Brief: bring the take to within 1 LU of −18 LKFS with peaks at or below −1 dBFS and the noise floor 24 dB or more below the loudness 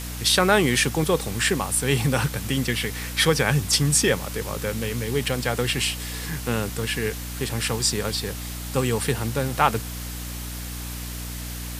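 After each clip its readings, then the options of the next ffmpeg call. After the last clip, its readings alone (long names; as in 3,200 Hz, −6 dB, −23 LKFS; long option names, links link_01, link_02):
mains hum 60 Hz; hum harmonics up to 300 Hz; level of the hum −32 dBFS; background noise floor −33 dBFS; target noise floor −48 dBFS; integrated loudness −23.5 LKFS; sample peak −3.0 dBFS; target loudness −18.0 LKFS
→ -af "bandreject=frequency=60:width_type=h:width=6,bandreject=frequency=120:width_type=h:width=6,bandreject=frequency=180:width_type=h:width=6,bandreject=frequency=240:width_type=h:width=6,bandreject=frequency=300:width_type=h:width=6"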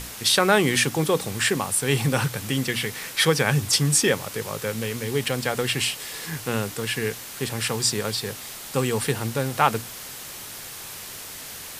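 mains hum none found; background noise floor −38 dBFS; target noise floor −48 dBFS
→ -af "afftdn=noise_reduction=10:noise_floor=-38"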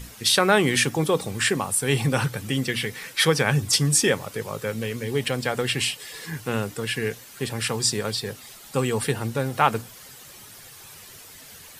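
background noise floor −45 dBFS; target noise floor −48 dBFS
→ -af "afftdn=noise_reduction=6:noise_floor=-45"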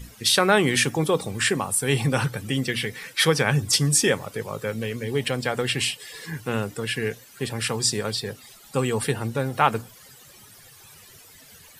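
background noise floor −50 dBFS; integrated loudness −23.5 LKFS; sample peak −3.5 dBFS; target loudness −18.0 LKFS
→ -af "volume=5.5dB,alimiter=limit=-1dB:level=0:latency=1"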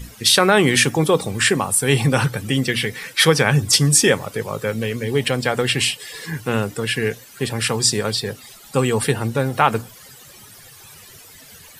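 integrated loudness −18.5 LKFS; sample peak −1.0 dBFS; background noise floor −44 dBFS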